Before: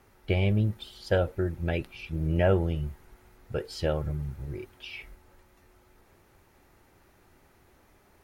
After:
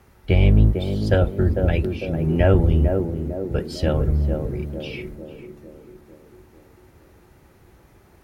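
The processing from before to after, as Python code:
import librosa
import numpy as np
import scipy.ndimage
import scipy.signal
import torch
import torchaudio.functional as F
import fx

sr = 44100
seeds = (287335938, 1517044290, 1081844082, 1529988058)

p1 = fx.octave_divider(x, sr, octaves=1, level_db=0.0)
p2 = scipy.signal.sosfilt(scipy.signal.butter(2, 45.0, 'highpass', fs=sr, output='sos'), p1)
p3 = fx.low_shelf(p2, sr, hz=100.0, db=8.0)
p4 = p3 + fx.echo_banded(p3, sr, ms=450, feedback_pct=59, hz=340.0, wet_db=-3.0, dry=0)
y = p4 * librosa.db_to_amplitude(4.5)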